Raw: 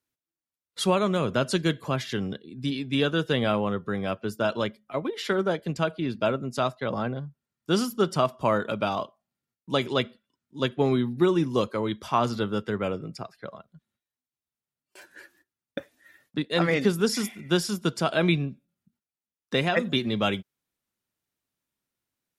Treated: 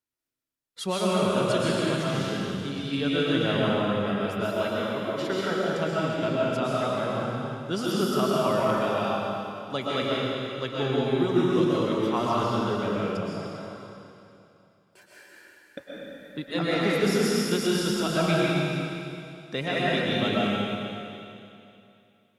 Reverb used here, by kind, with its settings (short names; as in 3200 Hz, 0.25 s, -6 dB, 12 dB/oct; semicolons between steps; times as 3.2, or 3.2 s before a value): digital reverb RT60 2.7 s, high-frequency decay 1×, pre-delay 85 ms, DRR -6.5 dB; gain -6.5 dB